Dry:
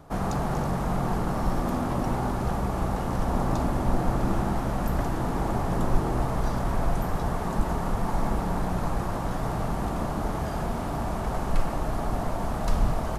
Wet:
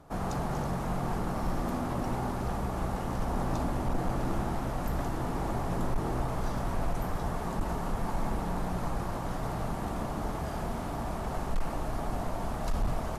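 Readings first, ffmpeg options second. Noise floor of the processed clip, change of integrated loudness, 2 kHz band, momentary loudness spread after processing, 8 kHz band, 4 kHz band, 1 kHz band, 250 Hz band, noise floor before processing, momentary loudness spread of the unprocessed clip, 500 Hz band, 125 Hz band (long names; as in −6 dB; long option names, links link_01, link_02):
−35 dBFS, −5.0 dB, −4.5 dB, 3 LU, −4.0 dB, −3.5 dB, −5.0 dB, −5.5 dB, −30 dBFS, 3 LU, −5.0 dB, −5.5 dB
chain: -af "bandreject=frequency=50:width_type=h:width=6,bandreject=frequency=100:width_type=h:width=6,bandreject=frequency=150:width_type=h:width=6,bandreject=frequency=200:width_type=h:width=6,asoftclip=type=hard:threshold=-18.5dB,volume=-4.5dB" -ar 32000 -c:a aac -b:a 64k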